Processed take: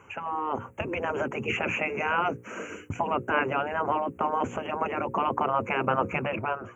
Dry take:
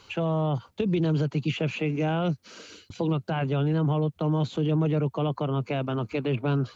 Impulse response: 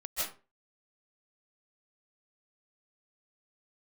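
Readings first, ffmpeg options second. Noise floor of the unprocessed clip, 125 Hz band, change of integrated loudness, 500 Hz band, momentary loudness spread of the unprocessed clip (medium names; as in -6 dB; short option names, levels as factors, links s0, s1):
-60 dBFS, -14.5 dB, -1.5 dB, -1.0 dB, 5 LU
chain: -af "afftfilt=real='re*lt(hypot(re,im),0.141)':imag='im*lt(hypot(re,im),0.141)':win_size=1024:overlap=0.75,highpass=85,highshelf=f=3500:g=-10,bandreject=f=60:t=h:w=6,bandreject=f=120:t=h:w=6,bandreject=f=180:t=h:w=6,bandreject=f=240:t=h:w=6,bandreject=f=300:t=h:w=6,bandreject=f=360:t=h:w=6,bandreject=f=420:t=h:w=6,bandreject=f=480:t=h:w=6,bandreject=f=540:t=h:w=6,dynaudnorm=f=120:g=9:m=2.51,asuperstop=centerf=4200:order=8:qfactor=1.1,volume=1.68"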